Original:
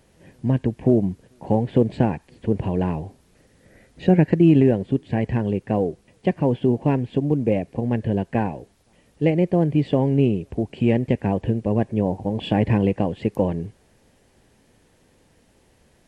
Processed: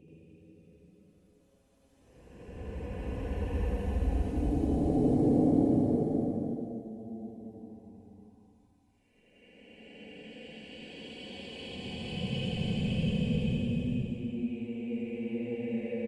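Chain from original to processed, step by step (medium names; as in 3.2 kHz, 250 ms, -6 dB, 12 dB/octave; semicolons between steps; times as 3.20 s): comb 4 ms, depth 65%; inverted gate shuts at -20 dBFS, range -24 dB; Paulstretch 33×, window 0.10 s, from 10.42 s; loudspeakers at several distances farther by 28 m 0 dB, 42 m -9 dB, 63 m -10 dB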